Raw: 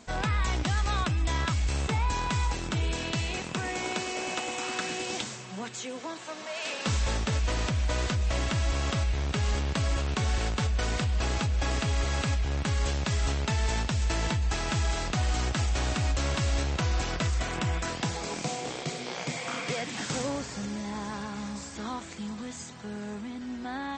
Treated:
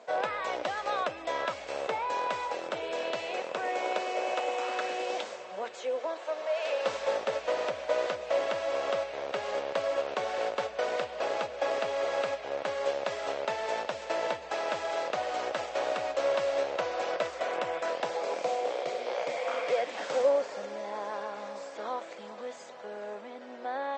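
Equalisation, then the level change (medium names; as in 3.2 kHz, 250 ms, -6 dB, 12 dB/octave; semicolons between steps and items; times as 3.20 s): resonant high-pass 550 Hz, resonance Q 4.9; distance through air 54 m; treble shelf 5.7 kHz -11.5 dB; -1.5 dB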